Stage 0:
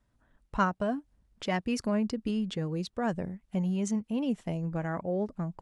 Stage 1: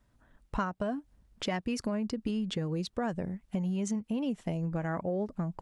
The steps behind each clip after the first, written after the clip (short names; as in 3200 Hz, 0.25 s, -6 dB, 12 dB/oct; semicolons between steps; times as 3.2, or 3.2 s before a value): compressor, threshold -33 dBFS, peak gain reduction 11.5 dB; gain +4 dB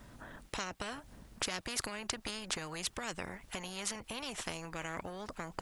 spectral compressor 4:1; gain +4 dB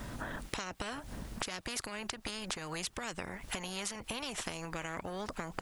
compressor 10:1, threshold -47 dBFS, peak gain reduction 17 dB; gain +11.5 dB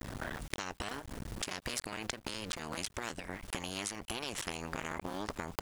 cycle switcher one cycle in 2, muted; gain +3 dB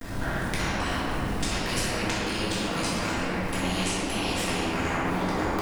shoebox room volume 200 m³, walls hard, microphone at 1.7 m; gain +1 dB